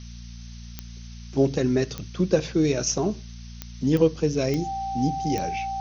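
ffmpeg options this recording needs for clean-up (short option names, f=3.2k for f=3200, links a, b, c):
-af "adeclick=t=4,bandreject=f=58.3:t=h:w=4,bandreject=f=116.6:t=h:w=4,bandreject=f=174.9:t=h:w=4,bandreject=f=233.2:t=h:w=4,bandreject=f=780:w=30,afftdn=nr=29:nf=-40"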